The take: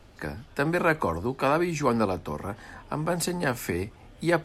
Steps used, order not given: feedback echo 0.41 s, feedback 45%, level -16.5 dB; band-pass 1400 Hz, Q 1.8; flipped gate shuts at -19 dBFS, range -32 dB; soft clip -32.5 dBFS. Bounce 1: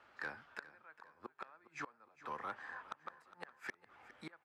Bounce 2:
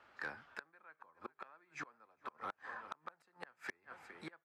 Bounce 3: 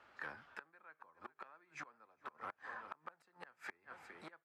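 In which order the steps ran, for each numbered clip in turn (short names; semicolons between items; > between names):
flipped gate > band-pass > soft clip > feedback echo; feedback echo > flipped gate > band-pass > soft clip; feedback echo > flipped gate > soft clip > band-pass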